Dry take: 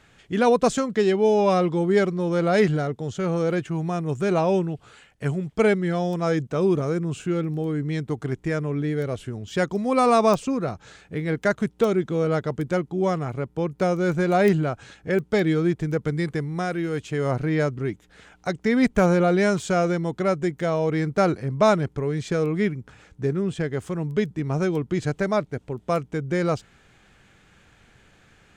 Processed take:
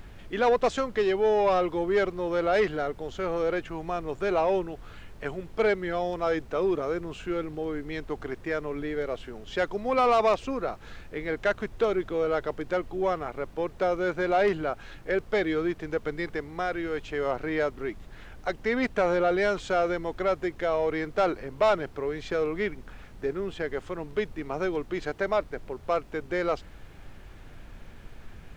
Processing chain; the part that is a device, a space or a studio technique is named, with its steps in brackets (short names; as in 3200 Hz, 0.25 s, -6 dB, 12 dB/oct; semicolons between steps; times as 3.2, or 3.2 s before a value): aircraft cabin announcement (BPF 410–3900 Hz; soft clip -15 dBFS, distortion -16 dB; brown noise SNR 15 dB)